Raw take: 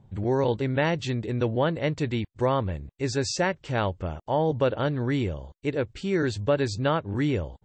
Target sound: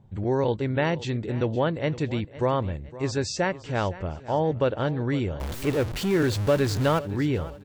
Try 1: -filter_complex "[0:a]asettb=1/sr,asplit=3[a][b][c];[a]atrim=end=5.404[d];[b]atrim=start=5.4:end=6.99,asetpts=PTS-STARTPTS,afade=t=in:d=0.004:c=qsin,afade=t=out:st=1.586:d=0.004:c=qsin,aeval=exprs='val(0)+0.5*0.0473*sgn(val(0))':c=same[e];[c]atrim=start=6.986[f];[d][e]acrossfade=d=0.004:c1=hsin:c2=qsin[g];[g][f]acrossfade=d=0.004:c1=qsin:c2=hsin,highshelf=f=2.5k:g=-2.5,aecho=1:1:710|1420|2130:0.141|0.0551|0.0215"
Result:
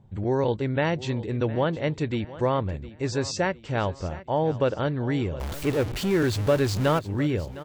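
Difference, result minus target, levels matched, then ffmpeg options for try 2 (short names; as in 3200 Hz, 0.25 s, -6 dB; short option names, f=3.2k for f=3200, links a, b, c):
echo 0.199 s late
-filter_complex "[0:a]asettb=1/sr,asplit=3[a][b][c];[a]atrim=end=5.404[d];[b]atrim=start=5.4:end=6.99,asetpts=PTS-STARTPTS,afade=t=in:d=0.004:c=qsin,afade=t=out:st=1.586:d=0.004:c=qsin,aeval=exprs='val(0)+0.5*0.0473*sgn(val(0))':c=same[e];[c]atrim=start=6.986[f];[d][e]acrossfade=d=0.004:c1=hsin:c2=qsin[g];[g][f]acrossfade=d=0.004:c1=qsin:c2=hsin,highshelf=f=2.5k:g=-2.5,aecho=1:1:511|1022|1533:0.141|0.0551|0.0215"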